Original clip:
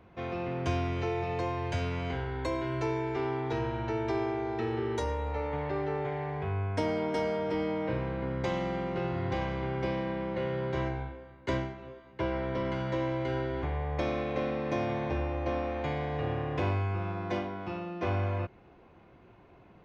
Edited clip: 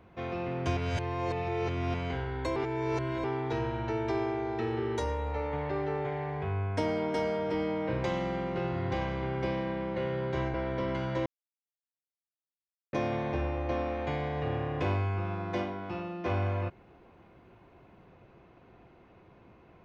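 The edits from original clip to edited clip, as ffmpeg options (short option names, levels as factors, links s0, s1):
-filter_complex "[0:a]asplit=9[s0][s1][s2][s3][s4][s5][s6][s7][s8];[s0]atrim=end=0.772[s9];[s1]atrim=start=0.768:end=1.942,asetpts=PTS-STARTPTS,areverse[s10];[s2]atrim=start=1.938:end=2.562[s11];[s3]atrim=start=2.558:end=3.242,asetpts=PTS-STARTPTS,areverse[s12];[s4]atrim=start=3.238:end=8.042[s13];[s5]atrim=start=8.438:end=10.942[s14];[s6]atrim=start=12.308:end=13.03,asetpts=PTS-STARTPTS,afade=t=out:st=0.718:d=0.004:c=hsin[s15];[s7]atrim=start=13.03:end=14.7,asetpts=PTS-STARTPTS,volume=0[s16];[s8]atrim=start=14.7,asetpts=PTS-STARTPTS,afade=t=in:d=0.004:c=hsin[s17];[s9][s10]acrossfade=d=0.004:c1=hsin:c2=hsin[s18];[s18][s11]acrossfade=d=0.004:c1=hsin:c2=hsin[s19];[s19][s12]acrossfade=d=0.004:c1=hsin:c2=hsin[s20];[s20][s13]acrossfade=d=0.004:c1=hsin:c2=hsin[s21];[s21][s14]acrossfade=d=0.004:c1=hsin:c2=hsin[s22];[s15][s16][s17]concat=n=3:v=0:a=1[s23];[s22][s23]acrossfade=d=0.004:c1=hsin:c2=hsin"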